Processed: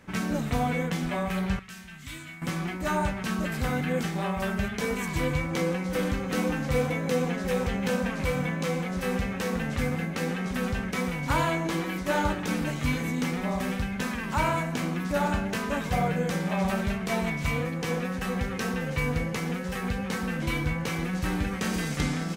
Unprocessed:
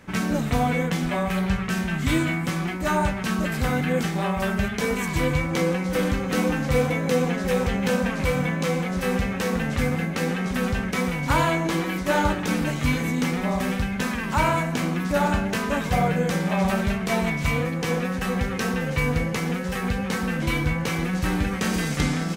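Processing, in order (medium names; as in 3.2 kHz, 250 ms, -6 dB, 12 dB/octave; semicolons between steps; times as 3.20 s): 1.59–2.42 s: amplifier tone stack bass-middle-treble 5-5-5; trim -4.5 dB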